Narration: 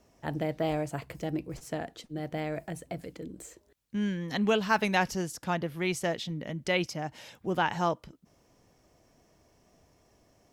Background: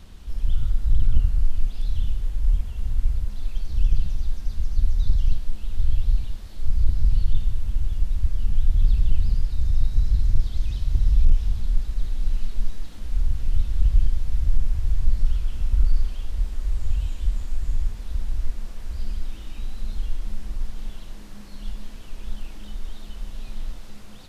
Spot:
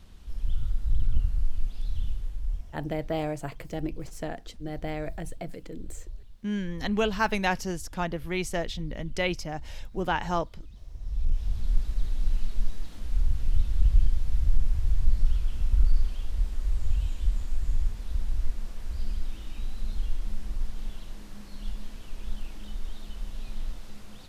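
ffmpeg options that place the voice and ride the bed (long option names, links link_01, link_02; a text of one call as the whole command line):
ffmpeg -i stem1.wav -i stem2.wav -filter_complex "[0:a]adelay=2500,volume=0dB[link_01];[1:a]volume=12dB,afade=type=out:start_time=2.11:duration=0.76:silence=0.188365,afade=type=in:start_time=10.99:duration=0.77:silence=0.125893[link_02];[link_01][link_02]amix=inputs=2:normalize=0" out.wav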